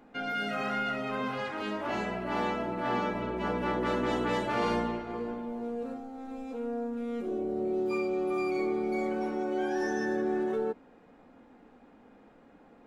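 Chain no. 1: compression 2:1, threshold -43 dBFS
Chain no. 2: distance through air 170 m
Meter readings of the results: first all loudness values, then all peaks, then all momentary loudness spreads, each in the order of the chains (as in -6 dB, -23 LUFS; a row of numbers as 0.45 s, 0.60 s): -40.0 LUFS, -32.5 LUFS; -27.0 dBFS, -18.0 dBFS; 18 LU, 7 LU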